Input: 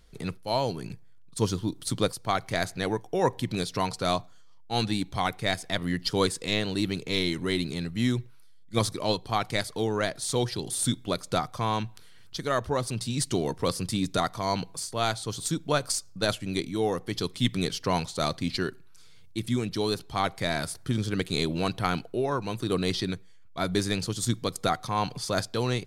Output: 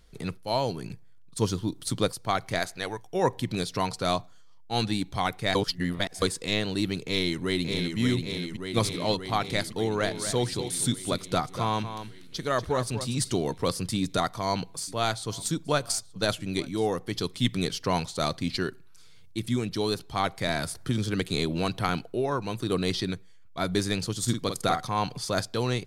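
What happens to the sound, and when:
0:02.58–0:03.14: parametric band 69 Hz → 450 Hz −10.5 dB 2.7 octaves
0:05.55–0:06.22: reverse
0:07.04–0:07.98: delay throw 580 ms, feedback 70%, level −4.5 dB
0:09.76–0:13.32: single-tap delay 240 ms −10 dB
0:14.00–0:17.02: single-tap delay 875 ms −23 dB
0:20.48–0:21.89: multiband upward and downward compressor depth 40%
0:24.23–0:24.88: double-tracking delay 48 ms −6.5 dB

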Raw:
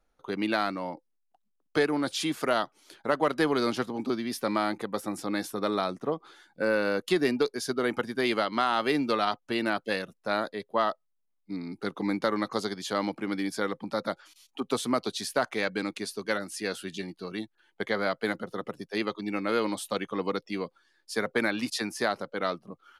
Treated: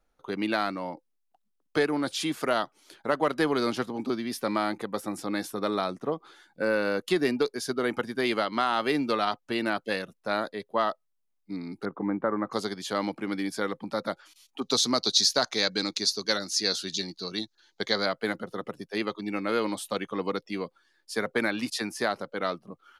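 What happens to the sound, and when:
0:11.85–0:12.51: low-pass filter 1,600 Hz 24 dB per octave
0:14.61–0:18.06: flat-topped bell 5,000 Hz +15 dB 1.1 octaves

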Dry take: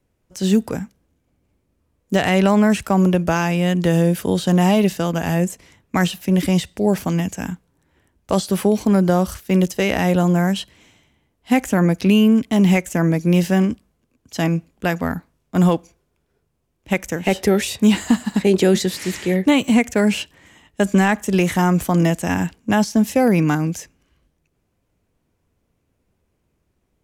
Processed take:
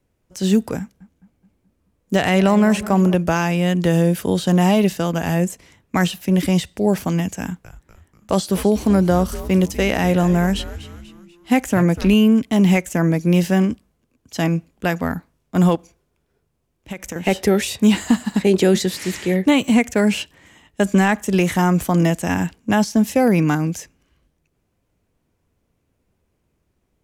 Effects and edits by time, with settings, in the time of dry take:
0:00.79–0:03.14: feedback echo with a low-pass in the loop 212 ms, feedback 53%, level −15 dB
0:07.40–0:12.14: echo with shifted repeats 244 ms, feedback 46%, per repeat −130 Hz, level −14 dB
0:15.75–0:17.16: downward compressor, threshold −25 dBFS

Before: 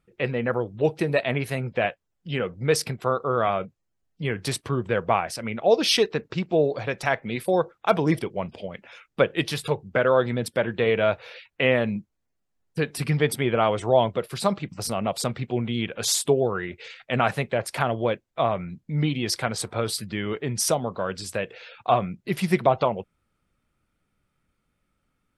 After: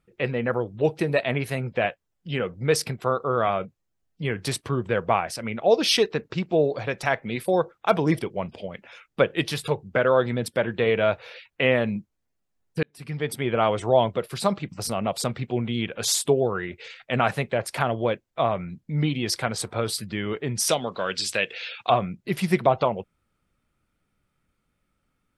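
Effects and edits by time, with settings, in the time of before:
0:12.83–0:13.64: fade in
0:20.69–0:21.90: meter weighting curve D

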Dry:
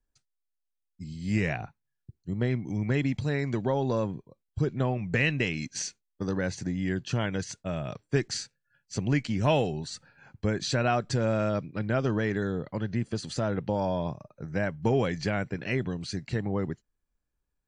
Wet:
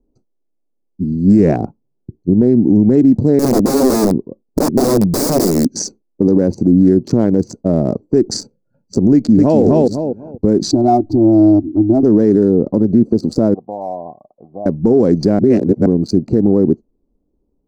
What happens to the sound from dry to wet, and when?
0:03.39–0:05.71: wrap-around overflow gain 26.5 dB
0:09.13–0:09.62: delay throw 250 ms, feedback 20%, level −2 dB
0:10.71–0:12.03: drawn EQ curve 100 Hz 0 dB, 180 Hz −23 dB, 320 Hz +4 dB, 480 Hz −27 dB, 720 Hz 0 dB, 1,500 Hz −20 dB, 2,500 Hz −17 dB, 3,900 Hz −1 dB, 11,000 Hz −23 dB
0:13.54–0:14.66: formant resonators in series a
0:15.39–0:15.86: reverse
whole clip: adaptive Wiener filter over 25 samples; drawn EQ curve 140 Hz 0 dB, 230 Hz +13 dB, 360 Hz +14 dB, 3,100 Hz −21 dB, 4,800 Hz 0 dB; boost into a limiter +16 dB; level −1.5 dB

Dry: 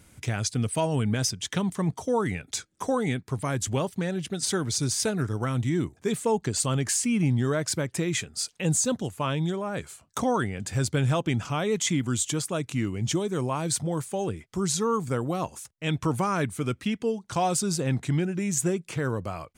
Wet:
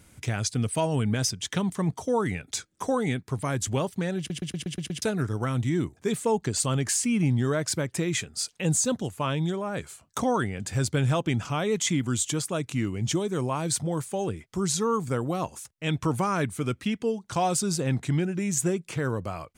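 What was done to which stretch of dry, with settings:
0:04.18: stutter in place 0.12 s, 7 plays

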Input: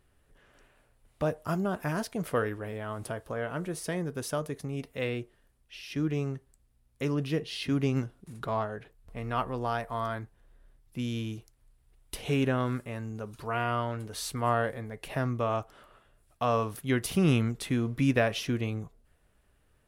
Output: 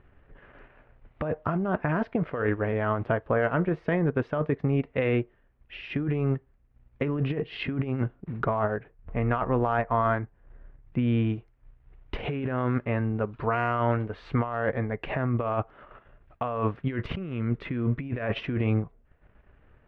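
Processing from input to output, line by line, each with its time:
0:08.16–0:11.30: high-frequency loss of the air 170 metres
0:16.82–0:18.26: parametric band 760 Hz −11.5 dB 0.21 octaves
whole clip: low-pass filter 2,400 Hz 24 dB per octave; compressor whose output falls as the input rises −33 dBFS, ratio −1; transient designer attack +1 dB, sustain −8 dB; level +7 dB

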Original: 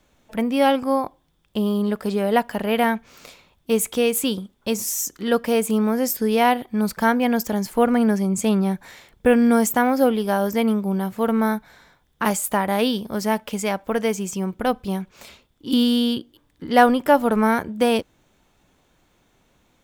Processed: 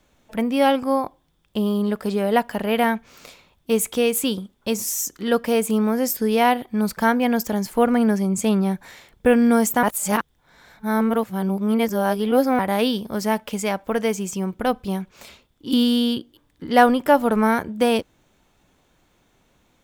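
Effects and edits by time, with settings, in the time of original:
0:09.83–0:12.59: reverse

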